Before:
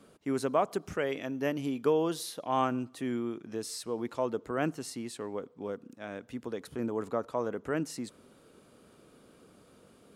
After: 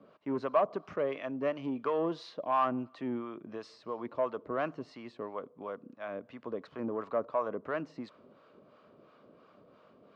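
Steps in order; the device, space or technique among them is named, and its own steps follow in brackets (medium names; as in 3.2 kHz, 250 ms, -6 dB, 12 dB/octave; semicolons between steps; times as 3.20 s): guitar amplifier with harmonic tremolo (harmonic tremolo 2.9 Hz, depth 70%, crossover 670 Hz; saturation -25.5 dBFS, distortion -16 dB; cabinet simulation 110–4000 Hz, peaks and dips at 610 Hz +9 dB, 1.1 kHz +9 dB, 3.5 kHz -4 dB)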